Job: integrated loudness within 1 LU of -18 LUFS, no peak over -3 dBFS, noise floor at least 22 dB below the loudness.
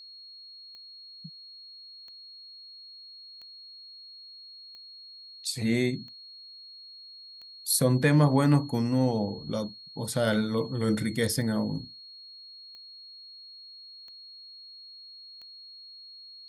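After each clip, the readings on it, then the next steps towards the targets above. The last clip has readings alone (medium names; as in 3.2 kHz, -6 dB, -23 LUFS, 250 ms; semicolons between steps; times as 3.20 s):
clicks found 12; steady tone 4.3 kHz; tone level -45 dBFS; loudness -27.0 LUFS; peak level -9.5 dBFS; loudness target -18.0 LUFS
-> de-click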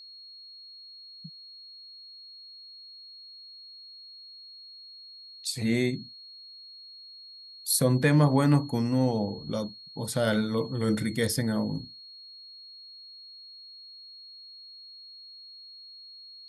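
clicks found 0; steady tone 4.3 kHz; tone level -45 dBFS
-> band-stop 4.3 kHz, Q 30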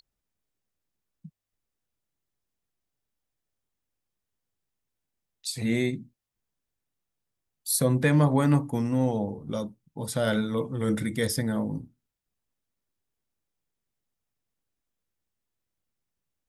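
steady tone not found; loudness -26.5 LUFS; peak level -9.5 dBFS; loudness target -18.0 LUFS
-> trim +8.5 dB; peak limiter -3 dBFS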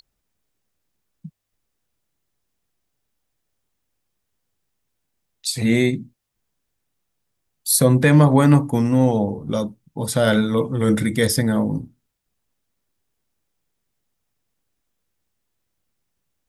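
loudness -18.5 LUFS; peak level -3.0 dBFS; noise floor -76 dBFS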